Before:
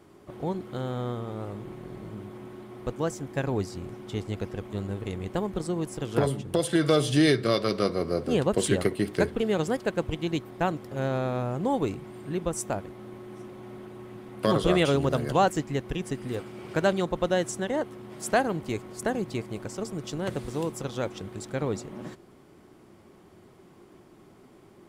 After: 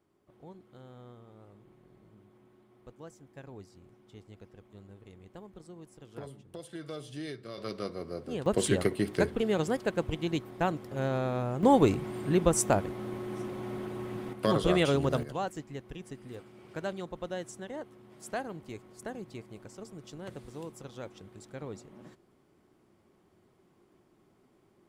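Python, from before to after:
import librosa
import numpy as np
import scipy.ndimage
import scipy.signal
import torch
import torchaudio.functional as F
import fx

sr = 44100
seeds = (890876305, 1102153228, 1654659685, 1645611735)

y = fx.gain(x, sr, db=fx.steps((0.0, -19.0), (7.58, -11.0), (8.46, -2.5), (11.63, 5.0), (14.33, -3.0), (15.23, -12.0)))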